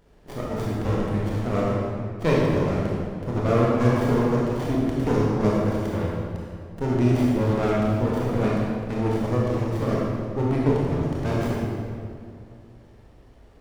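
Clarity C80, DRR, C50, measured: -0.5 dB, -5.5 dB, -2.5 dB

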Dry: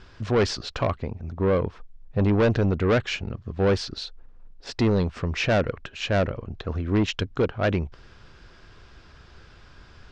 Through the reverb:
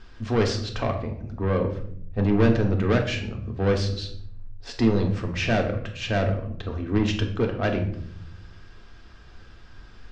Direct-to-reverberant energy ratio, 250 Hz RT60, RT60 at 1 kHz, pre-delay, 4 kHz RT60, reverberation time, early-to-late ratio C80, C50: 2.0 dB, 1.1 s, 0.50 s, 3 ms, 0.45 s, 0.65 s, 12.0 dB, 8.5 dB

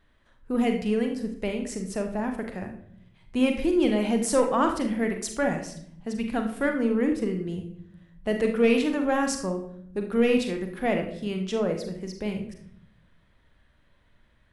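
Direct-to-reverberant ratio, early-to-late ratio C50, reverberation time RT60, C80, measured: 4.0 dB, 7.5 dB, 0.65 s, 11.0 dB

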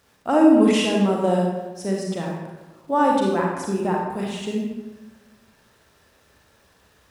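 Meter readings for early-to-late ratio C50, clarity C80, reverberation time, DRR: 0.0 dB, 3.5 dB, 1.2 s, -2.0 dB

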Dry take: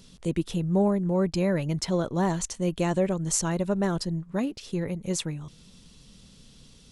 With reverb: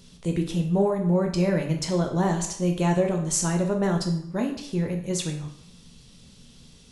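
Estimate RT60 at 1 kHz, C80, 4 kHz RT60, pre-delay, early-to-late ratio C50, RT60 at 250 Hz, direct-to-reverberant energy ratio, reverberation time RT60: 0.70 s, 11.0 dB, 0.60 s, 9 ms, 7.5 dB, 0.60 s, 2.5 dB, 0.70 s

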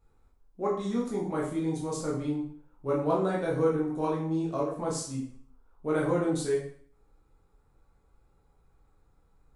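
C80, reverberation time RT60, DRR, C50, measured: 8.0 dB, 0.55 s, -5.0 dB, 5.0 dB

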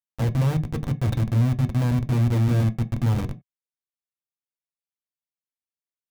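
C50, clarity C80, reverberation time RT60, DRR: 21.0 dB, 28.0 dB, not exponential, 5.5 dB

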